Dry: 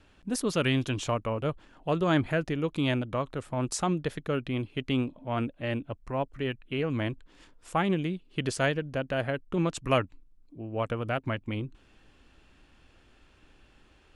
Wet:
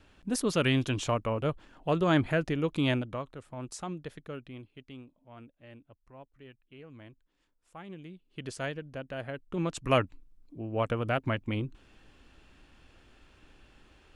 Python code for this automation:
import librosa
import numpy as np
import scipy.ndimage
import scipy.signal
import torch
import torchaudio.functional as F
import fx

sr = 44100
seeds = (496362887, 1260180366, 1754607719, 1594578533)

y = fx.gain(x, sr, db=fx.line((2.92, 0.0), (3.35, -10.0), (4.24, -10.0), (5.02, -20.0), (7.76, -20.0), (8.52, -8.5), (9.25, -8.5), (10.02, 1.0)))